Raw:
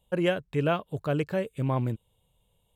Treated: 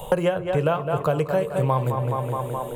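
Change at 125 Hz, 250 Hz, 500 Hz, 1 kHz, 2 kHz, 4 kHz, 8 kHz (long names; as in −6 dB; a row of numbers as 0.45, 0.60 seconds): +6.0 dB, +1.5 dB, +7.5 dB, +10.0 dB, +2.0 dB, +0.5 dB, can't be measured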